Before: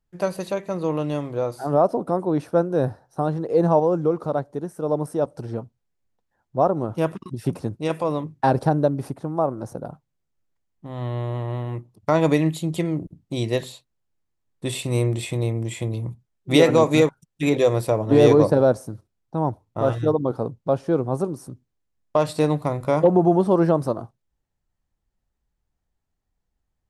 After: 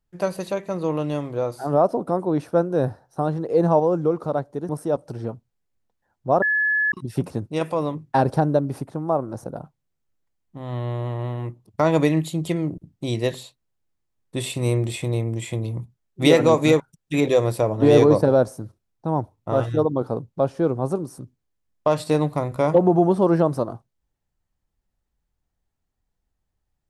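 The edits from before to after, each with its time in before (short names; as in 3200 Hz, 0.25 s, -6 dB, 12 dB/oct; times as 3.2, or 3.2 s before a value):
4.69–4.98 cut
6.71–7.21 bleep 1710 Hz -17.5 dBFS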